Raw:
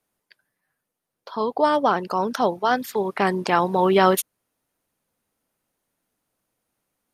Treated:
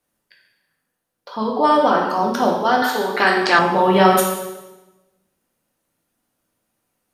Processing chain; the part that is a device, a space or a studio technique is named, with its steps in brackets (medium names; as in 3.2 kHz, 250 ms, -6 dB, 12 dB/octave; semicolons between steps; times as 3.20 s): bathroom (reverberation RT60 1.1 s, pre-delay 3 ms, DRR -2 dB); 2.82–3.59 s: fifteen-band graphic EQ 160 Hz -11 dB, 1.6 kHz +8 dB, 4 kHz +11 dB